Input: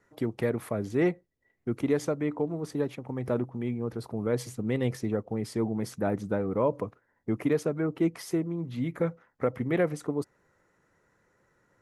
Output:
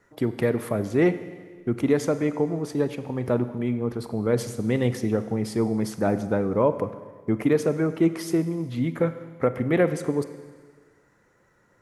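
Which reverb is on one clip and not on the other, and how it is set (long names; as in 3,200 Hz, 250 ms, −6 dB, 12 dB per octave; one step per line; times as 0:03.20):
four-comb reverb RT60 1.6 s, combs from 33 ms, DRR 11.5 dB
level +5 dB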